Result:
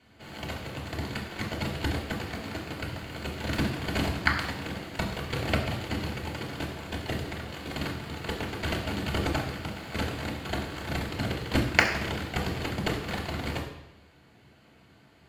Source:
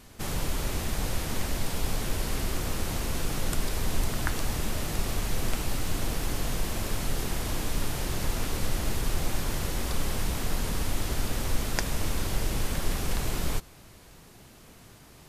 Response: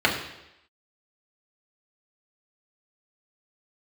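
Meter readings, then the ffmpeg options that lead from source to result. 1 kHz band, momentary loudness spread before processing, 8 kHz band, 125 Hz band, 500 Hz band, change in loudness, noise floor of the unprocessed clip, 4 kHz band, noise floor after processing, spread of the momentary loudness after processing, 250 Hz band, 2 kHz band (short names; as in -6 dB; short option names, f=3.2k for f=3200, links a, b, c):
+2.0 dB, 3 LU, -11.0 dB, -0.5 dB, +2.0 dB, 0.0 dB, -52 dBFS, +0.5 dB, -58 dBFS, 9 LU, +2.5 dB, +6.0 dB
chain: -filter_complex "[0:a]aeval=exprs='0.596*(cos(1*acos(clip(val(0)/0.596,-1,1)))-cos(1*PI/2))+0.0944*(cos(7*acos(clip(val(0)/0.596,-1,1)))-cos(7*PI/2))':c=same[a];[1:a]atrim=start_sample=2205[b];[a][b]afir=irnorm=-1:irlink=0,volume=-2.5dB"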